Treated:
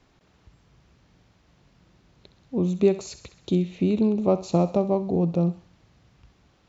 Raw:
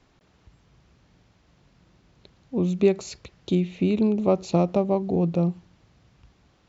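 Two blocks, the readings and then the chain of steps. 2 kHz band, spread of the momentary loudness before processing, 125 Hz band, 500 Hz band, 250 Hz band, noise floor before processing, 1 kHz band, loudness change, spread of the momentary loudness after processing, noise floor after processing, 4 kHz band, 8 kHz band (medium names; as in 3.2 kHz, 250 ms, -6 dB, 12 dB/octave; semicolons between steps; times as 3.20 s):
-4.0 dB, 10 LU, 0.0 dB, 0.0 dB, 0.0 dB, -62 dBFS, -0.5 dB, 0.0 dB, 10 LU, -62 dBFS, -1.5 dB, no reading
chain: dynamic bell 2.3 kHz, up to -5 dB, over -46 dBFS, Q 1; on a send: thinning echo 65 ms, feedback 59%, high-pass 910 Hz, level -12 dB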